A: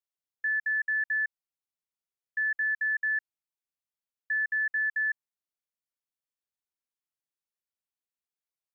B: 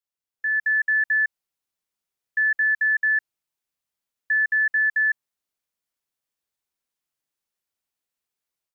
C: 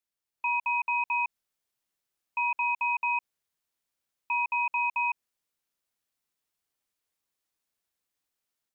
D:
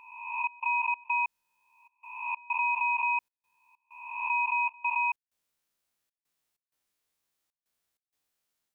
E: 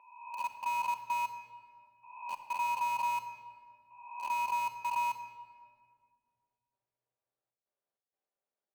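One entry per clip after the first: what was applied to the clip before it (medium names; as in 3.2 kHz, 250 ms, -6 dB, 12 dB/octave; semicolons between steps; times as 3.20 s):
level rider gain up to 7.5 dB
peak limiter -25 dBFS, peak gain reduction 8 dB; ring modulator 780 Hz; trim +4 dB
reverse spectral sustain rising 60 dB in 1.03 s; trance gate "xxx.xx.xx" 96 bpm -24 dB
band-pass filter 570 Hz, Q 1.6; in parallel at -10.5 dB: bit crusher 6-bit; on the sum: simulated room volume 3400 m³, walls mixed, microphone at 1.2 m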